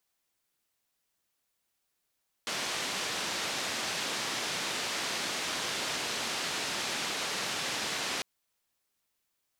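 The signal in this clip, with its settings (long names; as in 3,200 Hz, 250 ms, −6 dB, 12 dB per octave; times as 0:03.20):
band-limited noise 150–5,200 Hz, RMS −34 dBFS 5.75 s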